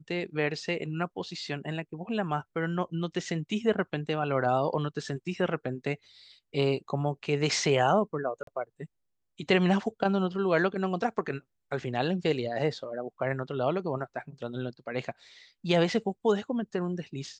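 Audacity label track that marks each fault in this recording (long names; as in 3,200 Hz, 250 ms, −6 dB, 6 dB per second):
8.430000	8.470000	drop-out 43 ms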